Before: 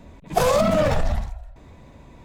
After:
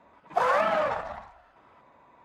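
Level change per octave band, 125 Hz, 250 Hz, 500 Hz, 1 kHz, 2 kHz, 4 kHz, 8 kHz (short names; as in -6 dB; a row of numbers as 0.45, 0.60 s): -22.5 dB, -17.0 dB, -7.5 dB, -1.0 dB, +0.5 dB, -10.0 dB, under -15 dB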